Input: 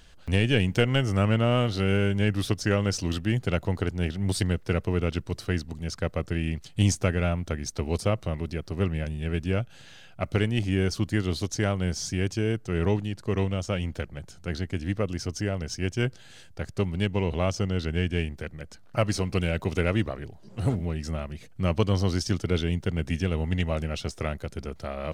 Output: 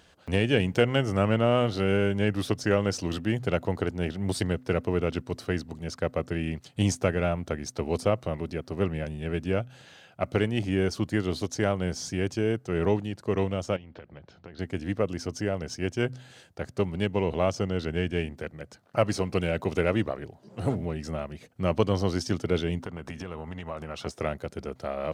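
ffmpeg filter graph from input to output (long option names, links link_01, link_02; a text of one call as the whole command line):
ffmpeg -i in.wav -filter_complex "[0:a]asettb=1/sr,asplit=3[link_01][link_02][link_03];[link_01]atrim=end=13.764[link_04];[link_02]atrim=start=13.76:end=14.59,asetpts=PTS-STARTPTS,afade=type=in:duration=0.004:curve=qsin,afade=type=out:start_time=0.826:duration=0.004:curve=qsin,lowpass=frequency=4300:width=0.5412,lowpass=frequency=4300:width=1.3066,acompressor=threshold=-39dB:ratio=10:attack=3.2:release=140:knee=1:detection=peak[link_05];[link_03]atrim=start=14.586[link_06];[link_04][link_05]acrossfade=duration=0.004:curve1=hsin:curve2=qsin[link_07];[link_07][link_06]acrossfade=duration=0.004:curve1=qsin:curve2=hsin,asettb=1/sr,asplit=3[link_08][link_09][link_10];[link_08]atrim=end=22.814[link_11];[link_09]atrim=start=22.81:end=24.06,asetpts=PTS-STARTPTS,afade=type=in:duration=0.004:curve=qsin,afade=type=out:start_time=1.246:duration=0.004:curve=qsin,equalizer=frequency=1100:width=1.7:gain=10.5,acompressor=threshold=-30dB:ratio=10:attack=3.2:release=140:knee=1:detection=peak[link_12];[link_10]atrim=start=24.056[link_13];[link_11][link_12]acrossfade=duration=0.004:curve1=hsin:curve2=qsin[link_14];[link_14][link_13]acrossfade=duration=0.004:curve1=qsin:curve2=hsin,highpass=81,equalizer=frequency=610:width_type=o:width=2.7:gain=6.5,bandreject=frequency=127.1:width_type=h:width=4,bandreject=frequency=254.2:width_type=h:width=4,volume=-3.5dB" out.wav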